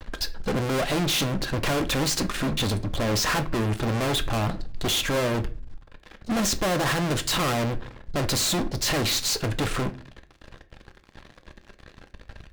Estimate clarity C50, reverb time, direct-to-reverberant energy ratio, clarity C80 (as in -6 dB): 17.0 dB, 0.40 s, 8.5 dB, 22.0 dB